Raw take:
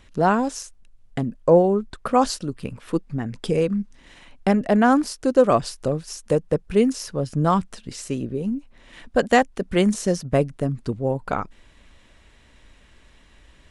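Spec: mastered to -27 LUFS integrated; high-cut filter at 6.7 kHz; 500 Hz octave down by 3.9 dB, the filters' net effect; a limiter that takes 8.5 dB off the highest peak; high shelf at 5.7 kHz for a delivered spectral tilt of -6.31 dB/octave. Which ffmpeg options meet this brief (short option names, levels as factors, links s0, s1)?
-af "lowpass=6700,equalizer=f=500:t=o:g=-4.5,highshelf=f=5700:g=-4,volume=0.891,alimiter=limit=0.211:level=0:latency=1"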